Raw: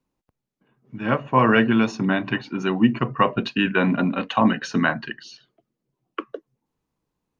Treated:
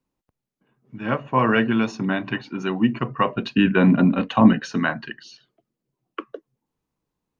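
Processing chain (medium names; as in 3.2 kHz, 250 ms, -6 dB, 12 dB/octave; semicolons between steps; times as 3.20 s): 3.51–4.61 s: bass shelf 390 Hz +10 dB; trim -2 dB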